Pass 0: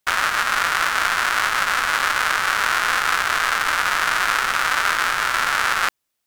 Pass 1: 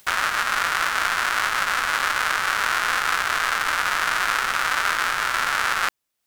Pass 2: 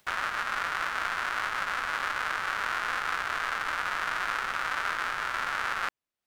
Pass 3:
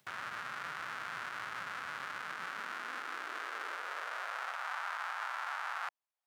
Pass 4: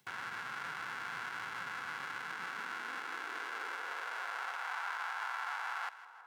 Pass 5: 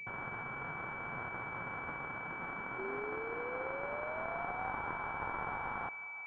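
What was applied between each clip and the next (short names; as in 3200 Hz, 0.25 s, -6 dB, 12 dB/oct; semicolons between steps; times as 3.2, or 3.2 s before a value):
upward compressor, threshold -31 dBFS; gain -2.5 dB
high shelf 4600 Hz -11.5 dB; gain -7 dB
limiter -23 dBFS, peak gain reduction 7 dB; high-pass sweep 130 Hz -> 790 Hz, 1.92–4.75; gain -7 dB
notch comb 610 Hz; split-band echo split 1400 Hz, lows 0.546 s, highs 0.16 s, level -15 dB; gain +1 dB
painted sound rise, 2.78–4.72, 380–780 Hz -49 dBFS; low shelf 120 Hz +11.5 dB; pulse-width modulation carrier 2300 Hz; gain +5 dB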